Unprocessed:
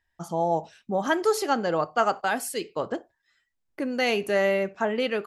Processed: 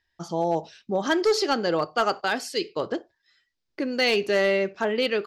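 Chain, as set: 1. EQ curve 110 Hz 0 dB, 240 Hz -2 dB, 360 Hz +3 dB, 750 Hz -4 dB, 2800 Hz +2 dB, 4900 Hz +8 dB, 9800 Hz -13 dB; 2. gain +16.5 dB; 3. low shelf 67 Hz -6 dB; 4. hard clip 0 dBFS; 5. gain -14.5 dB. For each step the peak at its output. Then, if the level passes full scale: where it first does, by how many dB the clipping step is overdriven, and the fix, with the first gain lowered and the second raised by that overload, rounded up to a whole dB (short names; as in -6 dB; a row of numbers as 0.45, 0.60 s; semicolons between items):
-10.5, +6.0, +5.5, 0.0, -14.5 dBFS; step 2, 5.5 dB; step 2 +10.5 dB, step 5 -8.5 dB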